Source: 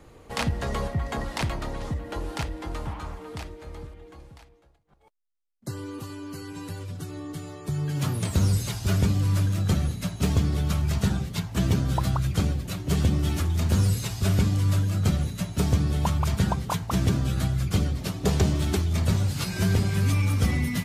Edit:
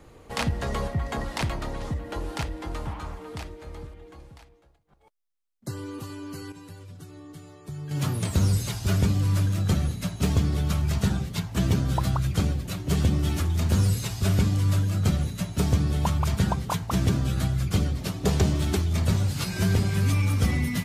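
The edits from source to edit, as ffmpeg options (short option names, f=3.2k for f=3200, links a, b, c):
-filter_complex "[0:a]asplit=3[a][b][c];[a]atrim=end=6.522[d];[b]atrim=start=6.518:end=7.912,asetpts=PTS-STARTPTS,volume=-8dB[e];[c]atrim=start=7.908[f];[d][e]acrossfade=d=0.004:c1=hsin:c2=hsin[g];[g][f]acrossfade=d=0.004:c1=hsin:c2=hsin"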